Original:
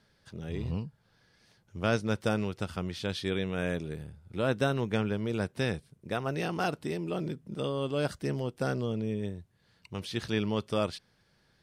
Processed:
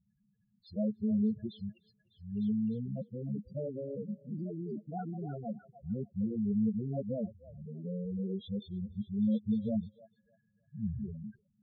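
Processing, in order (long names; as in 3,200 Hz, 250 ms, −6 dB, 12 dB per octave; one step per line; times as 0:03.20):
played backwards from end to start
parametric band 210 Hz +9.5 dB 0.27 octaves
spectral peaks only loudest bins 4
echo through a band-pass that steps 302 ms, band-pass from 1,200 Hz, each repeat 0.7 octaves, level −3 dB
level −4 dB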